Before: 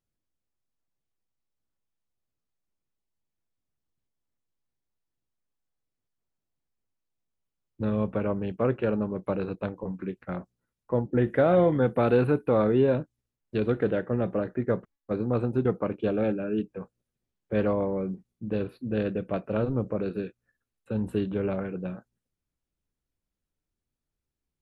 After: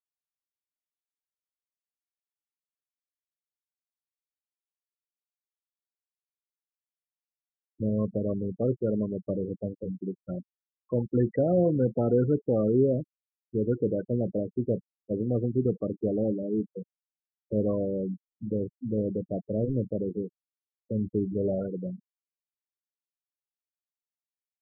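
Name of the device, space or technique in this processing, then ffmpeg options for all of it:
one-band saturation: -filter_complex "[0:a]acrossover=split=570|3000[a][b][c];[b]asoftclip=type=tanh:threshold=-38dB[d];[a][d][c]amix=inputs=3:normalize=0,asettb=1/sr,asplit=3[e][f][g];[e]atrim=end=21.344[h];[f]atrim=start=21.34:end=21.75,asetpts=PTS-STARTPTS,afade=t=in:d=0.004:c=qsin,afade=t=out:st=0.406:d=0.004:c=qsin,adynamicequalizer=threshold=0.00708:dfrequency=590:dqfactor=2:tfrequency=590:tqfactor=2:attack=5:release=100:ratio=0.375:range=2.5:mode=boostabove:tftype=bell[i];[g]atrim=start=21.746[j];[h][i]acrossfade=d=0.004:c1=hsin:c2=qsin[k];[k][j]acrossfade=d=0.004:c1=qsin:c2=hsin,afftfilt=real='re*gte(hypot(re,im),0.0501)':imag='im*gte(hypot(re,im),0.0501)':win_size=1024:overlap=0.75"

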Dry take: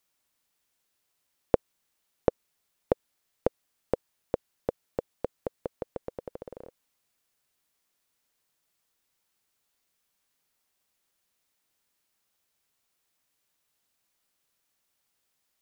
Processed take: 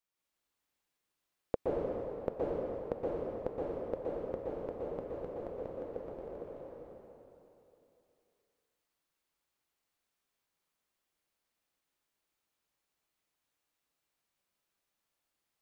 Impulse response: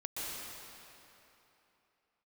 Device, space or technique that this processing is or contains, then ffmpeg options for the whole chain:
swimming-pool hall: -filter_complex "[1:a]atrim=start_sample=2205[a];[0:a][a]afir=irnorm=-1:irlink=0,highshelf=f=3.9k:g=-5.5,volume=-6.5dB"

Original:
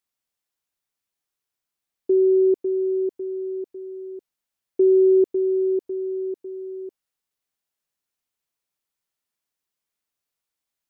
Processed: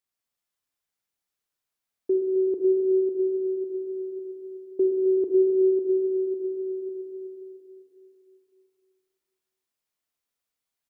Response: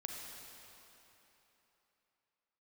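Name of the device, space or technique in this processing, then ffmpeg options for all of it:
cave: -filter_complex "[0:a]aecho=1:1:262:0.335[a];[1:a]atrim=start_sample=2205[b];[a][b]afir=irnorm=-1:irlink=0"

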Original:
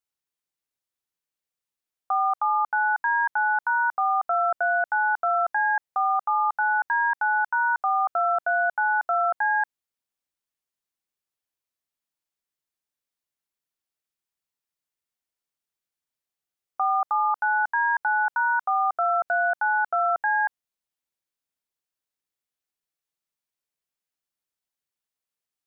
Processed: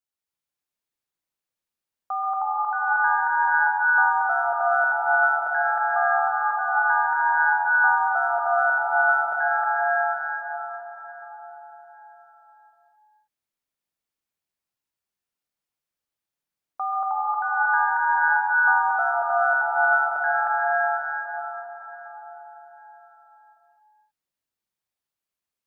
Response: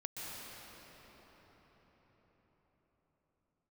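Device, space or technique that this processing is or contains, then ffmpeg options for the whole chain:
cathedral: -filter_complex "[1:a]atrim=start_sample=2205[a];[0:a][a]afir=irnorm=-1:irlink=0,volume=1dB"

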